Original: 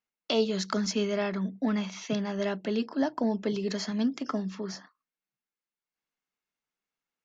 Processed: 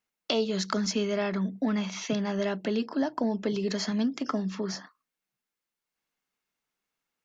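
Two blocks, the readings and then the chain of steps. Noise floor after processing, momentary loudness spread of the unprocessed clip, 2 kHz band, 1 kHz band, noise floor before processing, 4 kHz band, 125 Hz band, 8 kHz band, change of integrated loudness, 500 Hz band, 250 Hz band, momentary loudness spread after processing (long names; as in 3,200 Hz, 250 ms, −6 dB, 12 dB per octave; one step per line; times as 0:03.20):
below −85 dBFS, 5 LU, +1.0 dB, +1.0 dB, below −85 dBFS, +1.5 dB, +1.5 dB, can't be measured, +0.5 dB, 0.0 dB, +0.5 dB, 3 LU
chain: downward compressor 2 to 1, threshold −33 dBFS, peak gain reduction 7.5 dB
level +5 dB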